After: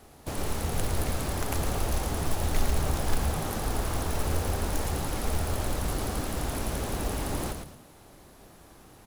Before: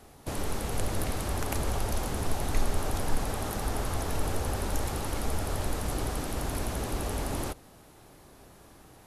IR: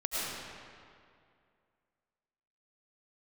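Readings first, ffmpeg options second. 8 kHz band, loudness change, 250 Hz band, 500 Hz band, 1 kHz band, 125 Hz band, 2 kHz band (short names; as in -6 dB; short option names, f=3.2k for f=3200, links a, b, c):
+1.5 dB, +2.0 dB, +1.5 dB, +1.0 dB, +1.0 dB, +2.5 dB, +1.5 dB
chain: -filter_complex "[0:a]acrusher=bits=4:mode=log:mix=0:aa=0.000001,asplit=5[a][b][c][d][e];[b]adelay=111,afreqshift=-85,volume=-6dB[f];[c]adelay=222,afreqshift=-170,volume=-16.2dB[g];[d]adelay=333,afreqshift=-255,volume=-26.3dB[h];[e]adelay=444,afreqshift=-340,volume=-36.5dB[i];[a][f][g][h][i]amix=inputs=5:normalize=0"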